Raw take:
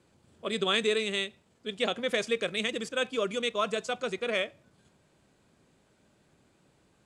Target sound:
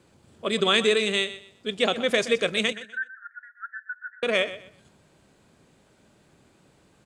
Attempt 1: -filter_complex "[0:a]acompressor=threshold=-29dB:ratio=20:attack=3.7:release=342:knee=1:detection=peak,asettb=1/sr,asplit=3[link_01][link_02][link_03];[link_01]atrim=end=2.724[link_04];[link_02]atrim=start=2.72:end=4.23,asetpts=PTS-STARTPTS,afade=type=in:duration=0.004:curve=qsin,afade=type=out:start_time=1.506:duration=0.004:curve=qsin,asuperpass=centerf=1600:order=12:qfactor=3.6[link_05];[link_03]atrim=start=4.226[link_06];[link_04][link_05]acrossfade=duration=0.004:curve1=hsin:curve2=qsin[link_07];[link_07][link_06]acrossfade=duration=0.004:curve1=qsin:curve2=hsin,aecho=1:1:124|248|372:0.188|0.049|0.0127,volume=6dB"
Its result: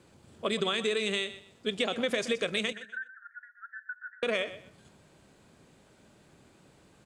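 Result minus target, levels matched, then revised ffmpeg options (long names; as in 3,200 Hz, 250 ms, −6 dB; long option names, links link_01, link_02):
downward compressor: peak gain reduction +11 dB
-filter_complex "[0:a]asettb=1/sr,asplit=3[link_01][link_02][link_03];[link_01]atrim=end=2.724[link_04];[link_02]atrim=start=2.72:end=4.23,asetpts=PTS-STARTPTS,afade=type=in:duration=0.004:curve=qsin,afade=type=out:start_time=1.506:duration=0.004:curve=qsin,asuperpass=centerf=1600:order=12:qfactor=3.6[link_05];[link_03]atrim=start=4.226[link_06];[link_04][link_05]acrossfade=duration=0.004:curve1=hsin:curve2=qsin[link_07];[link_07][link_06]acrossfade=duration=0.004:curve1=qsin:curve2=hsin,aecho=1:1:124|248|372:0.188|0.049|0.0127,volume=6dB"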